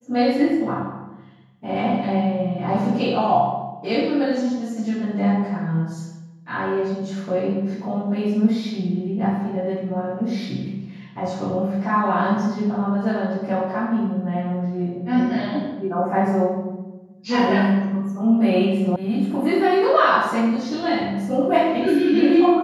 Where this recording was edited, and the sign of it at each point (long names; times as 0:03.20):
0:18.96: cut off before it has died away